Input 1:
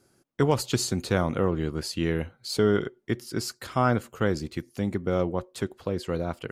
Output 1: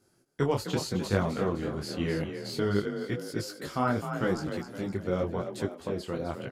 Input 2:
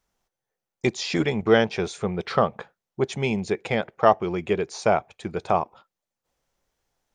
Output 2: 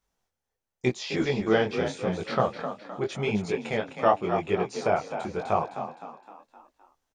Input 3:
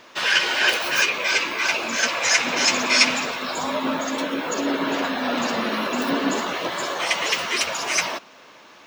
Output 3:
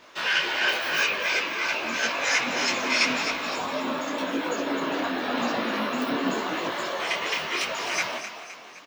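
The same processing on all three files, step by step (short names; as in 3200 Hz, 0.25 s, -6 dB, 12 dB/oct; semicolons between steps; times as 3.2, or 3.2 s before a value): dynamic EQ 8500 Hz, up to -8 dB, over -41 dBFS, Q 0.75; frequency-shifting echo 0.258 s, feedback 48%, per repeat +34 Hz, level -9 dB; detuned doubles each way 31 cents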